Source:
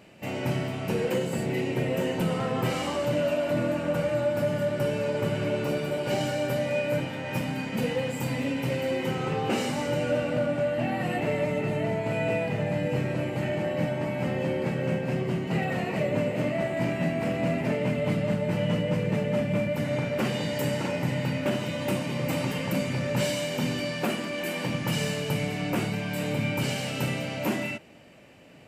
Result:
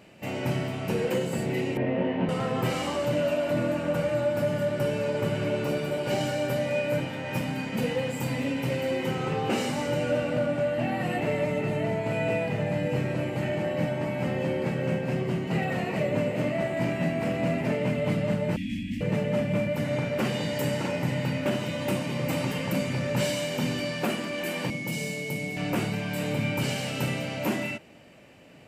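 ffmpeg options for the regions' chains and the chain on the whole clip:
-filter_complex "[0:a]asettb=1/sr,asplit=3[a][b][c];[a]atrim=end=1.774[d];[b]atrim=start=1.77:end=2.29,asetpts=PTS-STARTPTS,afade=t=in:d=0.004:c=qsin,afade=t=out:st=0.516:d=0.004:c=qsin,acrusher=bits=5:mix=0:aa=0.5,highpass=110,equalizer=f=150:t=q:w=4:g=-9,equalizer=f=270:t=q:w=4:g=5,equalizer=f=410:t=q:w=4:g=-7,equalizer=f=1.4k:t=q:w=4:g=-8,equalizer=f=2.2k:t=q:w=4:g=-3,lowpass=f=2.4k:w=0.5412,lowpass=f=2.4k:w=1.3066,asplit=2[e][f];[f]adelay=22,volume=-2dB[g];[e][g]amix=inputs=2:normalize=0,atrim=end_sample=22932[h];[c]atrim=start=2.286[i];[d][h]acrossfade=d=0.004:c1=hsin:c2=qsin[j];[j][i]acrossfade=d=0.004:c1=qsin:c2=hsin,asettb=1/sr,asplit=3[k][l][m];[k]atrim=end=18.564[n];[l]atrim=start=18.56:end=19.01,asetpts=PTS-STARTPTS,afade=t=in:d=0.004:c=qsin,afade=t=out:st=0.446:d=0.004:c=qsin,aeval=exprs='val(0)*sin(2*PI*400*n/s)':c=same,asuperstop=centerf=800:order=20:qfactor=0.54[o];[m]atrim=start=19.006[p];[n][o]acrossfade=d=0.004:c1=hsin:c2=qsin[q];[q][p]acrossfade=d=0.004:c1=qsin:c2=hsin,asettb=1/sr,asplit=3[r][s][t];[r]atrim=end=24.704[u];[s]atrim=start=24.7:end=25.57,asetpts=PTS-STARTPTS,afade=t=in:d=0.004:c=qsin,afade=t=out:st=0.866:d=0.004:c=qsin,highpass=180,equalizer=f=1.5k:t=o:w=2.1:g=-14,aeval=exprs='val(0)+0.0178*sin(2*PI*2200*n/s)':c=same[v];[t]atrim=start=25.566[w];[u][v]acrossfade=d=0.004:c1=hsin:c2=qsin[x];[x][w]acrossfade=d=0.004:c1=qsin:c2=hsin"

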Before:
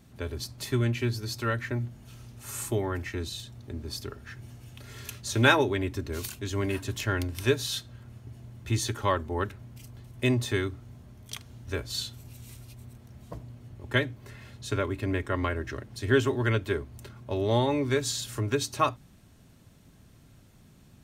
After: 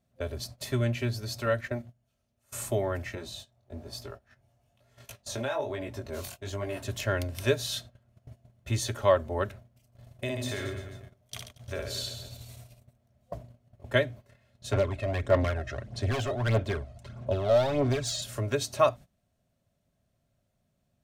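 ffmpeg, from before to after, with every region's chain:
-filter_complex "[0:a]asettb=1/sr,asplit=3[a][b][c];[a]atrim=end=1.464[d];[b]atrim=start=1.46:end=2.52,asetpts=PTS-STARTPTS,afade=t=in:d=0.004:c=qsin,afade=t=out:st=1.056:d=0.004:c=qsin,bandreject=f=60:t=h:w=6,bandreject=f=120:t=h:w=6,bandreject=f=180:t=h:w=6,agate=range=-8dB:threshold=-38dB:ratio=16:release=100:detection=peak[e];[c]atrim=start=2.516[f];[d][e]acrossfade=d=0.004:c1=hsin:c2=qsin[g];[g][f]acrossfade=d=0.004:c1=qsin:c2=hsin,asettb=1/sr,asplit=3[h][i][j];[h]atrim=end=3.154[k];[i]atrim=start=3.15:end=6.82,asetpts=PTS-STARTPTS,afade=t=in:d=0.004:c=qsin,afade=t=out:st=3.666:d=0.004:c=qsin,flanger=delay=17:depth=5.8:speed=1.1,equalizer=f=810:t=o:w=0.98:g=6.5,acompressor=threshold=-28dB:ratio=16:attack=3.2:release=140:knee=1:detection=peak[l];[j]atrim=start=6.816[m];[k][l]acrossfade=d=0.004:c1=hsin:c2=qsin[n];[n][m]acrossfade=d=0.004:c1=qsin:c2=hsin,asettb=1/sr,asplit=3[o][p][q];[o]atrim=end=9.864[r];[p]atrim=start=9.86:end=12.8,asetpts=PTS-STARTPTS,afade=t=in:d=0.004:c=qsin,afade=t=out:st=2.936:d=0.004:c=qsin,bandreject=f=50:t=h:w=6,bandreject=f=100:t=h:w=6,bandreject=f=150:t=h:w=6,bandreject=f=200:t=h:w=6,bandreject=f=250:t=h:w=6,bandreject=f=300:t=h:w=6,bandreject=f=350:t=h:w=6,bandreject=f=400:t=h:w=6,bandreject=f=450:t=h:w=6,acompressor=threshold=-31dB:ratio=2.5:attack=3.2:release=140:knee=1:detection=peak,aecho=1:1:60|135|228.8|345.9|492.4:0.631|0.398|0.251|0.158|0.1,atrim=end_sample=129654[s];[q]atrim=start=12.796[t];[r][s]acrossfade=d=0.004:c1=hsin:c2=qsin[u];[u][t]acrossfade=d=0.004:c1=qsin:c2=hsin,asettb=1/sr,asplit=3[v][w][x];[v]atrim=end=14.734[y];[w]atrim=start=14.73:end=18.22,asetpts=PTS-STARTPTS,afade=t=in:d=0.004:c=qsin,afade=t=out:st=3.486:d=0.004:c=qsin,lowpass=7.7k,asoftclip=type=hard:threshold=-26.5dB,aphaser=in_gain=1:out_gain=1:delay=1.6:decay=0.55:speed=1.6:type=sinusoidal[z];[x]atrim=start=18.216[aa];[y][z]acrossfade=d=0.004:c1=hsin:c2=qsin[ab];[ab][aa]acrossfade=d=0.004:c1=qsin:c2=hsin,agate=range=-18dB:threshold=-42dB:ratio=16:detection=peak,superequalizer=6b=0.631:8b=3.16,volume=-1.5dB"

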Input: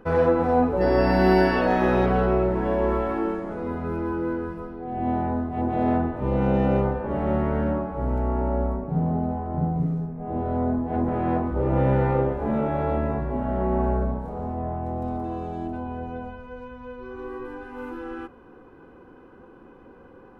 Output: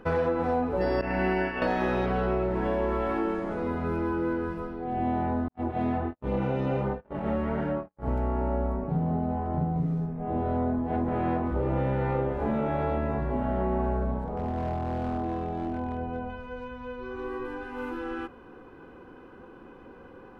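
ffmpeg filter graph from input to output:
-filter_complex "[0:a]asettb=1/sr,asplit=3[a][b][c];[a]atrim=end=1.014[d];[b]atrim=start=1.01:end=1.62,asetpts=PTS-STARTPTS,afade=t=in:d=0.004:c=qsin,afade=t=out:st=0.606:d=0.004:c=qsin,agate=range=-33dB:threshold=-15dB:ratio=3:release=100:detection=peak,highshelf=f=3.2k:t=q:w=3:g=-7.5[e];[c]atrim=start=1.616[f];[d][e]acrossfade=d=0.004:c1=hsin:c2=qsin[g];[g][f]acrossfade=d=0.004:c1=qsin:c2=hsin,asettb=1/sr,asplit=3[h][i][j];[h]atrim=end=5.484[k];[i]atrim=start=5.48:end=8.08,asetpts=PTS-STARTPTS,afade=t=in:d=0.004:c=qsin,afade=t=out:st=2.596:d=0.004:c=qsin,agate=range=-55dB:threshold=-26dB:ratio=16:release=100:detection=peak,flanger=delay=19.5:depth=3.8:speed=1.3[l];[j]atrim=start=8.076[m];[k][l]acrossfade=d=0.004:c1=hsin:c2=qsin[n];[n][m]acrossfade=d=0.004:c1=qsin:c2=hsin,asettb=1/sr,asplit=3[o][p][q];[o]atrim=end=14.244[r];[p]atrim=start=14.24:end=16.3,asetpts=PTS-STARTPTS,afade=t=in:d=0.004:c=qsin,afade=t=out:st=2.056:d=0.004:c=qsin,lowpass=f=1.9k:p=1,volume=25dB,asoftclip=hard,volume=-25dB[s];[q]atrim=start=16.296[t];[r][s]acrossfade=d=0.004:c1=hsin:c2=qsin[u];[u][t]acrossfade=d=0.004:c1=qsin:c2=hsin,equalizer=f=3.3k:t=o:w=2.1:g=4.5,acompressor=threshold=-24dB:ratio=4"

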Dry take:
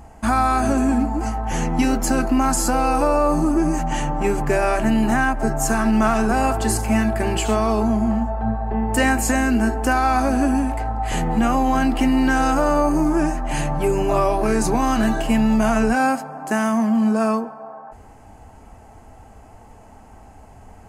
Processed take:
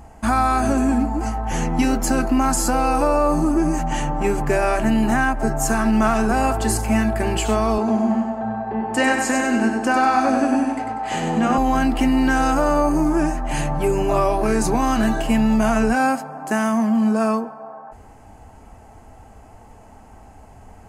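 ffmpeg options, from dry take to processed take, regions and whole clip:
-filter_complex "[0:a]asettb=1/sr,asplit=3[a][b][c];[a]atrim=end=7.784[d];[b]atrim=start=7.78:end=11.58,asetpts=PTS-STARTPTS,afade=t=in:d=0.004:c=qsin,afade=t=out:st=3.796:d=0.004:c=qsin,highpass=180,lowpass=7.5k,aecho=1:1:97|194|291|388|485:0.562|0.247|0.109|0.0479|0.0211,atrim=end_sample=167580[e];[c]atrim=start=11.576[f];[d][e]acrossfade=d=0.004:c1=hsin:c2=qsin[g];[g][f]acrossfade=d=0.004:c1=qsin:c2=hsin"

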